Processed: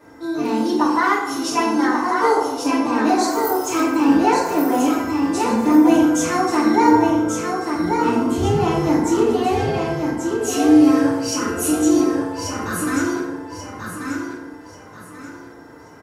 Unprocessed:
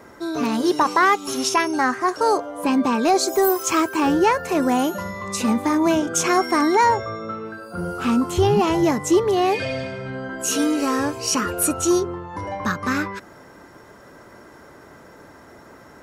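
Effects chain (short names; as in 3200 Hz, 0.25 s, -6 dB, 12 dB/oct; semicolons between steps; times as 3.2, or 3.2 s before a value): feedback echo 1.136 s, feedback 32%, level -5 dB; FDN reverb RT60 0.95 s, low-frequency decay 1.3×, high-frequency decay 0.55×, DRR -7.5 dB; gain -9.5 dB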